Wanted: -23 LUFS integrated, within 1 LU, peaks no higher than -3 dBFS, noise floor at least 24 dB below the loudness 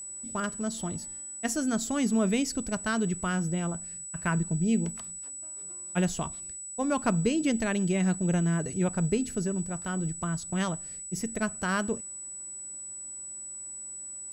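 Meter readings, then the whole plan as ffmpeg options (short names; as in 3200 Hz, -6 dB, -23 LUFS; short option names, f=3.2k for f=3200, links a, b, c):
steady tone 7900 Hz; tone level -38 dBFS; loudness -30.5 LUFS; peak -12.0 dBFS; loudness target -23.0 LUFS
-> -af "bandreject=f=7.9k:w=30"
-af "volume=7.5dB"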